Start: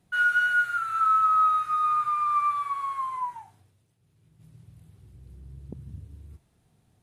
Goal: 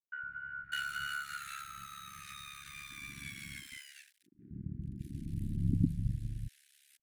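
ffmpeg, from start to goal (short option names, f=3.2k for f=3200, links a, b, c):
-filter_complex "[0:a]equalizer=f=490:w=1.2:g=-11.5,acompressor=threshold=-33dB:ratio=12,aeval=exprs='sgn(val(0))*max(abs(val(0))-0.00133,0)':c=same,asettb=1/sr,asplit=3[a][b][c];[a]atrim=end=2.904[d];[b]atrim=start=2.9:end=5.76,asetpts=PTS-STARTPTS,afade=t=in:d=0.004:c=qsin,afade=t=out:st=2.856:d=0.004:c=qsin,equalizer=f=230:w=0.93:g=14.5[e];[c]atrim=start=5.756[f];[d][e]acrossfade=d=0.004:c1=hsin:c2=qsin[g];[g][f]acrossfade=d=0.004:c1=qsin:c2=hsin,acrossover=split=260|1300[h][i][j];[h]adelay=110[k];[j]adelay=600[l];[k][i][l]amix=inputs=3:normalize=0,aeval=exprs='val(0)*sin(2*PI*35*n/s)':c=same,asuperstop=centerf=740:order=12:qfactor=0.59,volume=12dB"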